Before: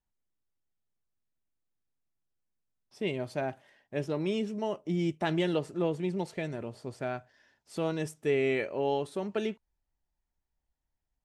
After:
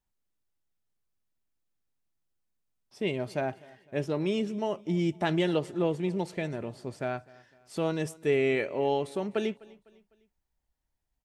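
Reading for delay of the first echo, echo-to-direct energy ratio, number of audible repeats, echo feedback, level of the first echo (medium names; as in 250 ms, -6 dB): 252 ms, -22.0 dB, 2, 43%, -23.0 dB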